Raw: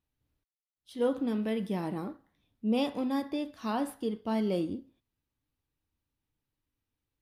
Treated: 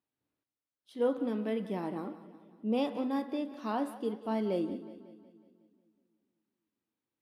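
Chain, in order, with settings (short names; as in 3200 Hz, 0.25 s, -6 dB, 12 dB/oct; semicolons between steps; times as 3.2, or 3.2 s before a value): HPF 230 Hz 12 dB/oct; high shelf 2600 Hz -8.5 dB; on a send: split-band echo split 330 Hz, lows 0.252 s, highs 0.183 s, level -15 dB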